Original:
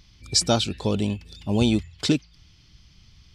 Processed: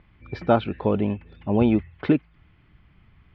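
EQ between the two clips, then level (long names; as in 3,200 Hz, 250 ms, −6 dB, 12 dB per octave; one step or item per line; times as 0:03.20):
low-pass filter 2,100 Hz 24 dB per octave
high-frequency loss of the air 130 metres
low-shelf EQ 200 Hz −9 dB
+5.5 dB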